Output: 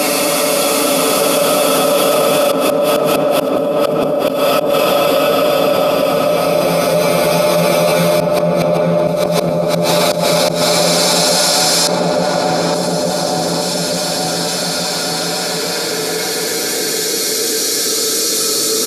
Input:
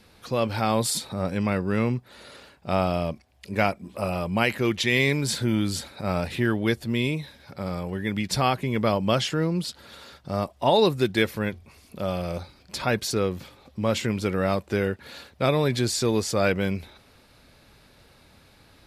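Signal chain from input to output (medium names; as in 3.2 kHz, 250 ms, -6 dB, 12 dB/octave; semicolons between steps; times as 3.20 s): reverse spectral sustain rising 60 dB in 0.64 s; high-pass 220 Hz 24 dB/octave; treble shelf 5.8 kHz +9 dB; hum notches 60/120/180/240/300/360/420 Hz; comb 6.9 ms, depth 87%; level held to a coarse grid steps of 11 dB; trance gate ".xxx..xxx" 95 bpm -24 dB; Paulstretch 14×, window 0.50 s, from 11.71 s; inverted gate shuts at -28 dBFS, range -29 dB; filtered feedback delay 871 ms, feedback 60%, low-pass 800 Hz, level -5 dB; loudness maximiser +33 dB; level flattener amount 70%; trim -4 dB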